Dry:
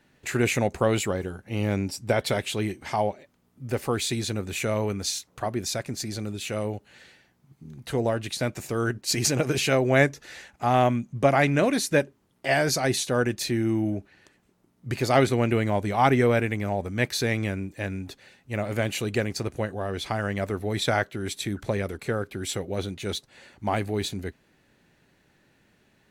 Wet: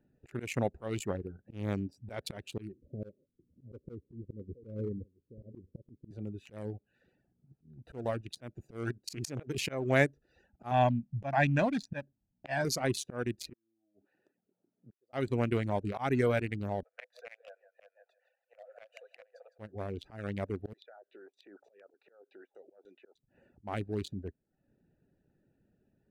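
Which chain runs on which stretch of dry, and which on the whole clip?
0:02.72–0:06.11: Butterworth low-pass 540 Hz 72 dB per octave + single-tap delay 668 ms −18 dB
0:10.71–0:12.65: high-frequency loss of the air 100 metres + comb filter 1.2 ms, depth 74%
0:13.53–0:15.13: Bessel high-pass filter 380 Hz + gate with flip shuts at −26 dBFS, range −33 dB
0:16.83–0:19.59: Chebyshev high-pass with heavy ripple 490 Hz, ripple 6 dB + high-shelf EQ 4,900 Hz −6 dB + repeating echo 159 ms, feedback 24%, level −10.5 dB
0:20.73–0:23.17: high-pass filter 440 Hz 24 dB per octave + downward compressor 8 to 1, threshold −39 dBFS + auto-filter low-pass saw down 3.3 Hz 740–7,900 Hz
whole clip: adaptive Wiener filter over 41 samples; reverb reduction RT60 0.53 s; volume swells 192 ms; level −5 dB

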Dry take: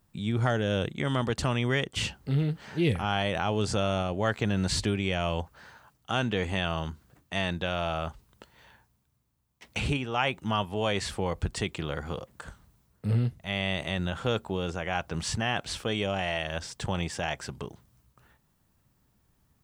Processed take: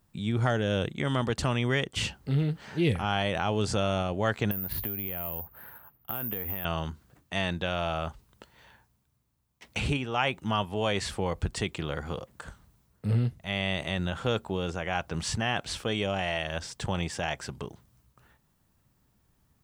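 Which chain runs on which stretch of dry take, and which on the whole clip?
0:04.51–0:06.65: low-pass filter 2,300 Hz + downward compressor 12 to 1, threshold −33 dBFS + bad sample-rate conversion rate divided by 3×, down none, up zero stuff
whole clip: no processing

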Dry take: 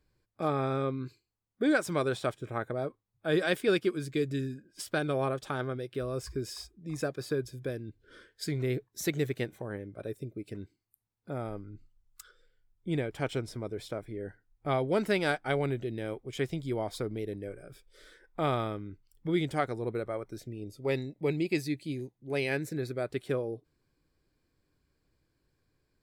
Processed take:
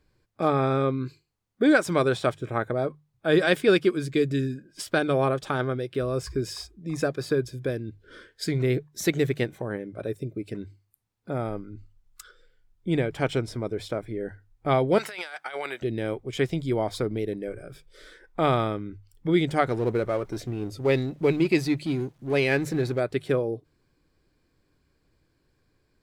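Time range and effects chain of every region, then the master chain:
0:14.98–0:15.82: high-pass filter 990 Hz + compressor whose output falls as the input rises −42 dBFS
0:19.66–0:23.00: mu-law and A-law mismatch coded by mu + high-shelf EQ 8,300 Hz −5 dB
whole clip: high-shelf EQ 9,100 Hz −7 dB; mains-hum notches 50/100/150 Hz; level +7 dB

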